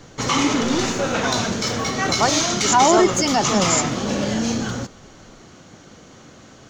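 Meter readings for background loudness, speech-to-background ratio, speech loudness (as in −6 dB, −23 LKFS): −19.5 LKFS, −3.5 dB, −23.0 LKFS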